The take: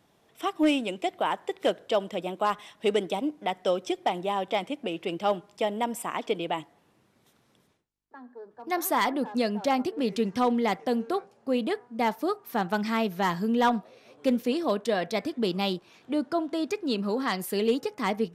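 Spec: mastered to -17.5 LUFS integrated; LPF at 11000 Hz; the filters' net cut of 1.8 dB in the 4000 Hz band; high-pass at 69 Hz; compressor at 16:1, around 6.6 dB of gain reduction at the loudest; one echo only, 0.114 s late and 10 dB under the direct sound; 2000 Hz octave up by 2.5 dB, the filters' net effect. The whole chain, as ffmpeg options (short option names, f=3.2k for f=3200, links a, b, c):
-af "highpass=69,lowpass=11k,equalizer=f=2k:t=o:g=4,equalizer=f=4k:t=o:g=-4.5,acompressor=threshold=-25dB:ratio=16,aecho=1:1:114:0.316,volume=14dB"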